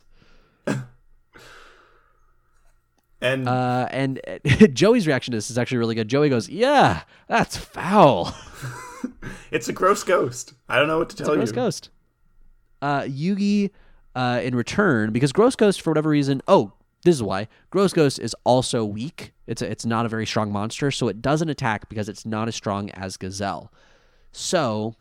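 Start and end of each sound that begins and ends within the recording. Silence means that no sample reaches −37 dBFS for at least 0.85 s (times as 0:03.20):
0:03.22–0:11.86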